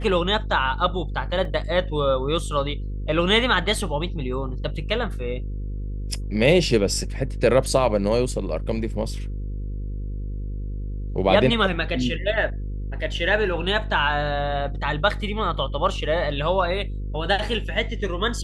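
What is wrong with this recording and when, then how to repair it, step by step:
buzz 50 Hz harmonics 10 -29 dBFS
1.45 s: dropout 2 ms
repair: de-hum 50 Hz, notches 10; interpolate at 1.45 s, 2 ms

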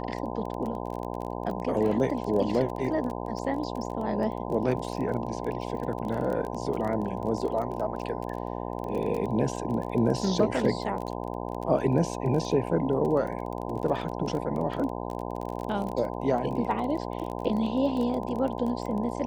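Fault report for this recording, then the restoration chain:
buzz 60 Hz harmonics 17 -34 dBFS
crackle 21 per s -32 dBFS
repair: de-click; de-hum 60 Hz, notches 17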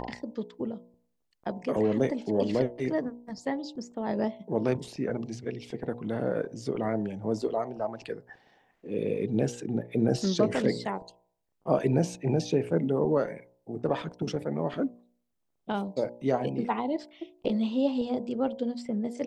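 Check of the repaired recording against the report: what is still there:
nothing left

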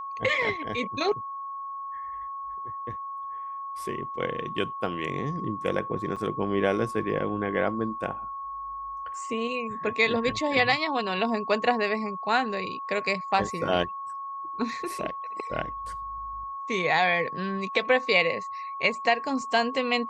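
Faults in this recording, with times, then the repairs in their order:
whine 1.1 kHz -33 dBFS
6.16–6.17 s: dropout 6 ms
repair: band-stop 1.1 kHz, Q 30; interpolate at 6.16 s, 6 ms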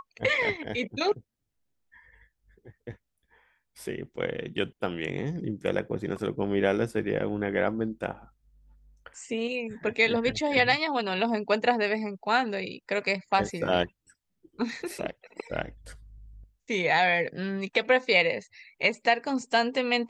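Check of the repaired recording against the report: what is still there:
nothing left

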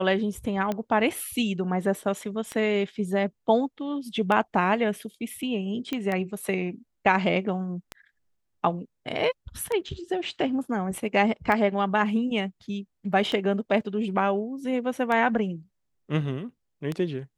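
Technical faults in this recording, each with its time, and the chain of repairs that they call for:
tick 33 1/3 rpm -16 dBFS
5.93 s: pop -16 dBFS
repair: de-click

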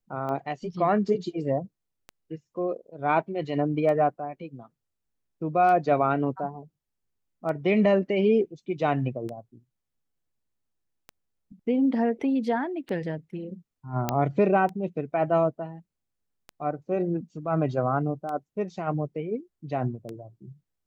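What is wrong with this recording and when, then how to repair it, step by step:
tick 33 1/3 rpm -23 dBFS
14.09 s: pop -10 dBFS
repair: de-click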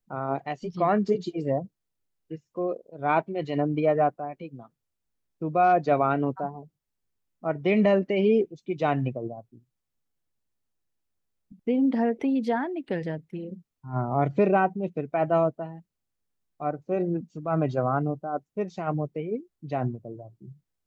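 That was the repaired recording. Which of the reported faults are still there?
nothing left

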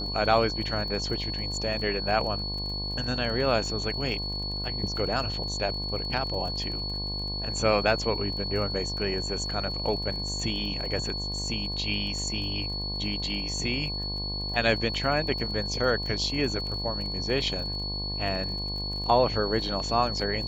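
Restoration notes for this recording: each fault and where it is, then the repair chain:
buzz 50 Hz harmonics 22 -35 dBFS
crackle 32 per s -36 dBFS
whine 4.4 kHz -32 dBFS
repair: de-click; de-hum 50 Hz, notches 22; band-stop 4.4 kHz, Q 30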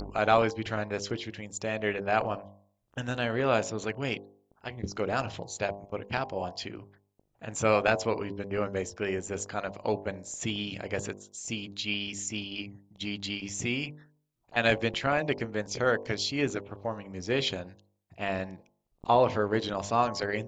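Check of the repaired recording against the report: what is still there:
nothing left

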